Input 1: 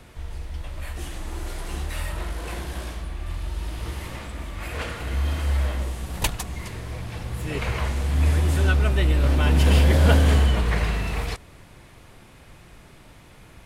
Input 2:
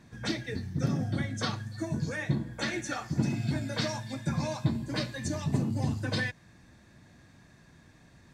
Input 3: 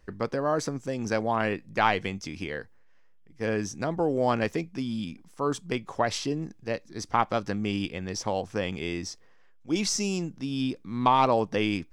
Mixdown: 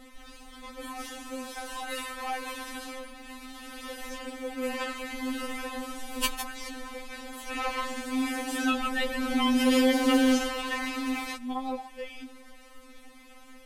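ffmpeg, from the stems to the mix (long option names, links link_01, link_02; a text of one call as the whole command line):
ffmpeg -i stem1.wav -i stem2.wav -i stem3.wav -filter_complex "[0:a]volume=1dB[link_01];[1:a]acrusher=bits=7:mode=log:mix=0:aa=0.000001,volume=-18dB,asplit=3[link_02][link_03][link_04];[link_02]atrim=end=3.82,asetpts=PTS-STARTPTS,afade=type=out:start_time=3.816:duration=0.004:curve=hsin[link_05];[link_03]atrim=start=3.82:end=5.62,asetpts=PTS-STARTPTS,volume=0[link_06];[link_04]atrim=start=5.62,asetpts=PTS-STARTPTS,afade=type=in:duration=0.004:curve=hsin[link_07];[link_05][link_06][link_07]concat=n=3:v=0:a=1[link_08];[2:a]adelay=450,volume=-10.5dB[link_09];[link_01][link_08][link_09]amix=inputs=3:normalize=0,afftfilt=real='re*3.46*eq(mod(b,12),0)':imag='im*3.46*eq(mod(b,12),0)':win_size=2048:overlap=0.75" out.wav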